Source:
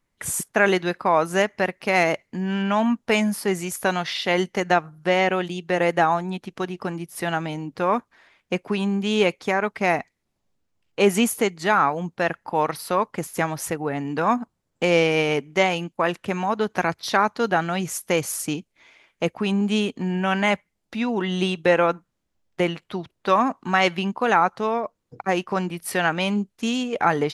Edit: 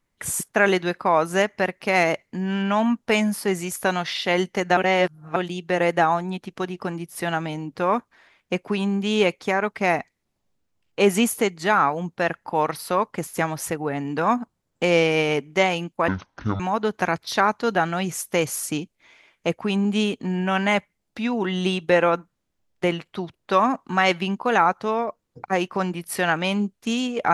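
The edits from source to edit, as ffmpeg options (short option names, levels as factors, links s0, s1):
-filter_complex "[0:a]asplit=5[s0][s1][s2][s3][s4];[s0]atrim=end=4.772[s5];[s1]atrim=start=4.768:end=5.362,asetpts=PTS-STARTPTS,areverse[s6];[s2]atrim=start=5.358:end=16.084[s7];[s3]atrim=start=16.08:end=16.36,asetpts=PTS-STARTPTS,asetrate=23814,aresample=44100[s8];[s4]atrim=start=16.356[s9];[s5][s6]acrossfade=d=0.004:c1=hsin:c2=hsin[s10];[s10][s7]acrossfade=d=0.004:c1=hsin:c2=hsin[s11];[s11][s8]acrossfade=d=0.004:c1=hsin:c2=hsin[s12];[s12][s9]acrossfade=d=0.004:c1=hsin:c2=hsin"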